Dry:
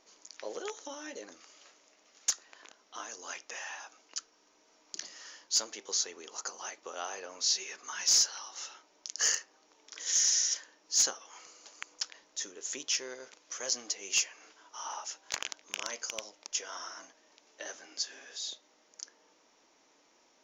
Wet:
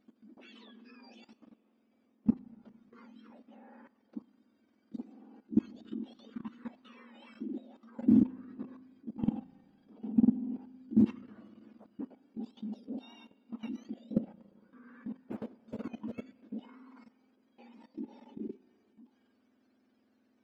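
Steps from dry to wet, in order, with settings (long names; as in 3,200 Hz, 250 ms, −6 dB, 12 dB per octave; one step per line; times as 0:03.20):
frequency axis turned over on the octave scale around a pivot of 1,200 Hz
output level in coarse steps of 17 dB
spring reverb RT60 2.4 s, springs 35/58 ms, chirp 80 ms, DRR 19.5 dB
level −3.5 dB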